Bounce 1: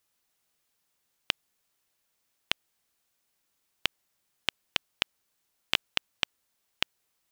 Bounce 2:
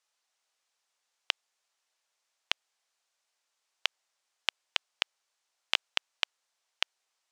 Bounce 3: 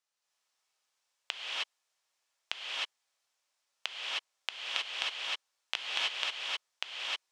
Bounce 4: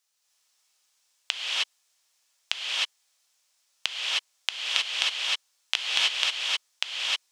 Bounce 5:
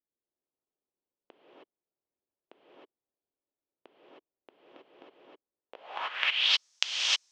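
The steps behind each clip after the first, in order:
Chebyshev band-pass 670–6800 Hz, order 2
gated-style reverb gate 340 ms rising, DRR -6.5 dB; trim -7.5 dB
treble shelf 2.9 kHz +11.5 dB; trim +2.5 dB
low-pass sweep 350 Hz -> 6.1 kHz, 5.63–6.64 s; trim -2 dB

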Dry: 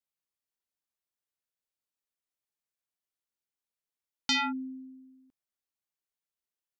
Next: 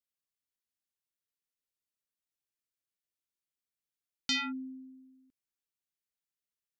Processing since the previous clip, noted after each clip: peaking EQ 800 Hz -13 dB 0.95 oct; trim -2.5 dB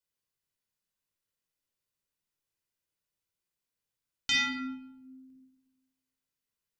simulated room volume 2500 m³, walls furnished, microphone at 4.9 m

